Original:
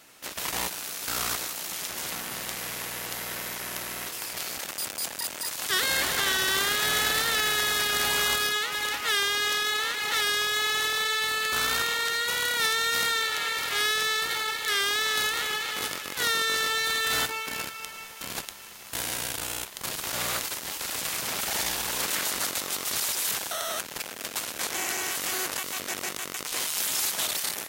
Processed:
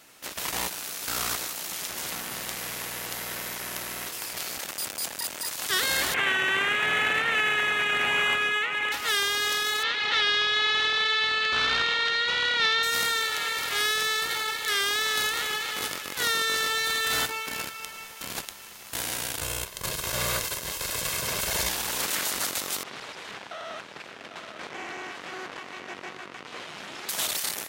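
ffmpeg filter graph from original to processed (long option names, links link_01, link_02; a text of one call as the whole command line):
ffmpeg -i in.wav -filter_complex "[0:a]asettb=1/sr,asplit=3[link_01][link_02][link_03];[link_01]atrim=end=6.144[link_04];[link_02]atrim=start=6.14:end=8.92,asetpts=PTS-STARTPTS,afade=type=in:duration=0.004:curve=qsin,afade=type=out:start_time=2.776:duration=0.004:curve=qsin,highpass=97,highshelf=frequency=3500:width_type=q:width=3:gain=-11,adynamicsmooth=sensitivity=4:basefreq=5100[link_05];[link_03]atrim=start=8.916[link_06];[link_04][link_05]acrossfade=duration=0.004:curve1=hsin:curve2=qsin[link_07];[link_07][link_06]acrossfade=duration=0.004:curve1=qsin:curve2=hsin,asettb=1/sr,asplit=3[link_08][link_09][link_10];[link_08]atrim=end=9.834[link_11];[link_09]atrim=start=9.83:end=12.83,asetpts=PTS-STARTPTS,afade=type=in:duration=0.004:curve=qsin,afade=type=out:start_time=2.996:duration=0.004:curve=qsin,lowpass=frequency=3800:width=0.5412,lowpass=frequency=3800:width=1.3066,aemphasis=mode=production:type=75kf[link_12];[link_10]atrim=start=12.826[link_13];[link_11][link_12]acrossfade=duration=0.004:curve1=hsin:curve2=qsin[link_14];[link_14][link_13]acrossfade=duration=0.004:curve1=qsin:curve2=hsin,asettb=1/sr,asplit=3[link_15][link_16][link_17];[link_15]atrim=end=19.414[link_18];[link_16]atrim=start=19.41:end=21.69,asetpts=PTS-STARTPTS,afade=type=in:duration=0.004:curve=qsin,afade=type=out:start_time=2.276:duration=0.004:curve=qsin,lowshelf=frequency=270:gain=8,aecho=1:1:1.9:0.5,atrim=end_sample=100548[link_19];[link_17]atrim=start=21.686[link_20];[link_18][link_19]acrossfade=duration=0.004:curve1=hsin:curve2=qsin[link_21];[link_21][link_20]acrossfade=duration=0.004:curve1=qsin:curve2=hsin,asettb=1/sr,asplit=3[link_22][link_23][link_24];[link_22]atrim=end=22.834[link_25];[link_23]atrim=start=22.83:end=27.09,asetpts=PTS-STARTPTS,afade=type=in:duration=0.004:curve=qsin,afade=type=out:start_time=4.256:duration=0.004:curve=qsin,aeval=exprs='(tanh(12.6*val(0)+0.7)-tanh(0.7))/12.6':channel_layout=same,highpass=120,lowpass=2700,aecho=1:1:797:0.355,atrim=end_sample=187866[link_26];[link_24]atrim=start=27.086[link_27];[link_25][link_26]acrossfade=duration=0.004:curve1=hsin:curve2=qsin[link_28];[link_28][link_27]acrossfade=duration=0.004:curve1=qsin:curve2=hsin" out.wav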